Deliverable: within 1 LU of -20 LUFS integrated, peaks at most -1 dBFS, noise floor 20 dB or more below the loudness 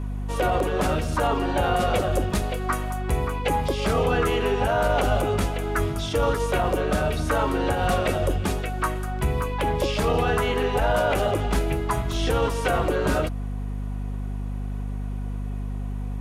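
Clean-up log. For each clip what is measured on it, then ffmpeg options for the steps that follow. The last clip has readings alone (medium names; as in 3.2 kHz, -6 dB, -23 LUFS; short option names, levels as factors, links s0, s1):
hum 50 Hz; highest harmonic 250 Hz; hum level -27 dBFS; loudness -25.0 LUFS; peak level -11.0 dBFS; loudness target -20.0 LUFS
-> -af "bandreject=f=50:t=h:w=6,bandreject=f=100:t=h:w=6,bandreject=f=150:t=h:w=6,bandreject=f=200:t=h:w=6,bandreject=f=250:t=h:w=6"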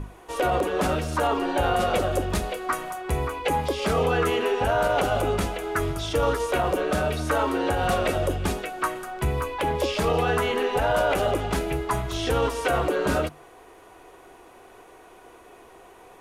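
hum not found; loudness -25.0 LUFS; peak level -12.5 dBFS; loudness target -20.0 LUFS
-> -af "volume=1.78"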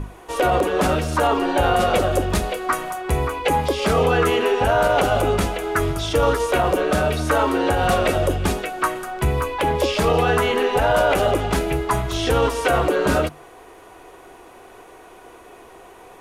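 loudness -20.0 LUFS; peak level -7.5 dBFS; noise floor -45 dBFS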